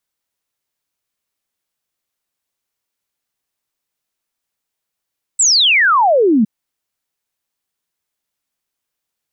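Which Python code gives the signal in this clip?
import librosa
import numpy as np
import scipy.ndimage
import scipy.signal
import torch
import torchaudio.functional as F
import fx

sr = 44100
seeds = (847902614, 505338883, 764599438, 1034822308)

y = fx.ess(sr, length_s=1.06, from_hz=8200.0, to_hz=200.0, level_db=-8.5)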